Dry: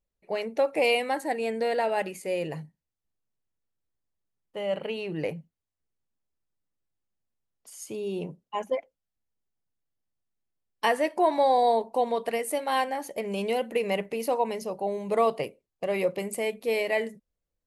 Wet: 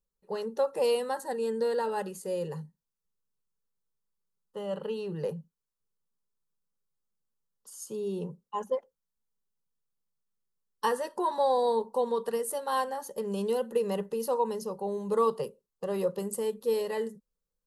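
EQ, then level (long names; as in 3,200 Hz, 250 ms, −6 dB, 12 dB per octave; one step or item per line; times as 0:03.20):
phaser with its sweep stopped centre 450 Hz, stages 8
0.0 dB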